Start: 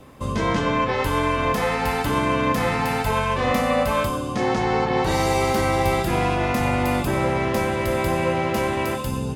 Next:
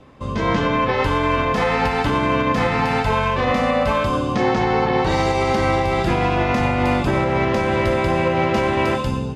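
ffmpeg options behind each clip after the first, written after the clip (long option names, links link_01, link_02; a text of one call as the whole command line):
ffmpeg -i in.wav -af "lowpass=5000,dynaudnorm=framelen=210:gausssize=5:maxgain=9dB,alimiter=limit=-8dB:level=0:latency=1:release=165,volume=-1dB" out.wav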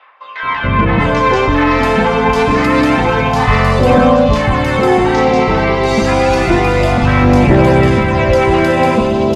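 ffmpeg -i in.wav -filter_complex "[0:a]aphaser=in_gain=1:out_gain=1:delay=4.7:decay=0.47:speed=0.28:type=sinusoidal,acrossover=split=940|3200[link_01][link_02][link_03];[link_01]adelay=430[link_04];[link_03]adelay=790[link_05];[link_04][link_02][link_05]amix=inputs=3:normalize=0,acontrast=83,volume=1dB" out.wav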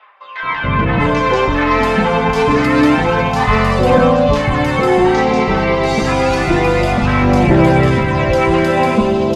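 ffmpeg -i in.wav -af "flanger=delay=4.6:depth=2.7:regen=52:speed=0.56:shape=triangular,volume=2.5dB" out.wav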